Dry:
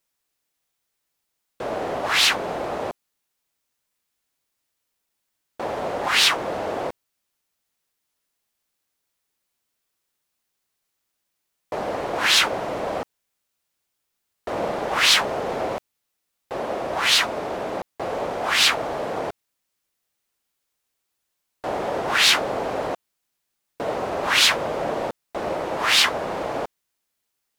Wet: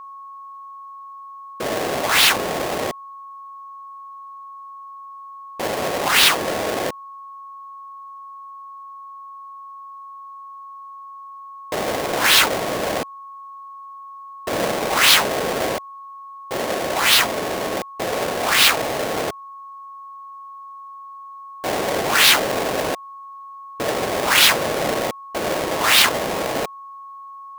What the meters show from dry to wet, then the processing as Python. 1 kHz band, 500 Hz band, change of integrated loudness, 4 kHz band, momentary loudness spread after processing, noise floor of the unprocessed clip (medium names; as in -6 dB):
+4.0 dB, +3.5 dB, +3.5 dB, +2.5 dB, 24 LU, -78 dBFS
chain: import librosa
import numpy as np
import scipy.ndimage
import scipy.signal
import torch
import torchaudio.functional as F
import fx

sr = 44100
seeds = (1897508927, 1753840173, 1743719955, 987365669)

y = fx.halfwave_hold(x, sr)
y = y + 10.0 ** (-35.0 / 20.0) * np.sin(2.0 * np.pi * 1100.0 * np.arange(len(y)) / sr)
y = fx.low_shelf(y, sr, hz=64.0, db=-6.0)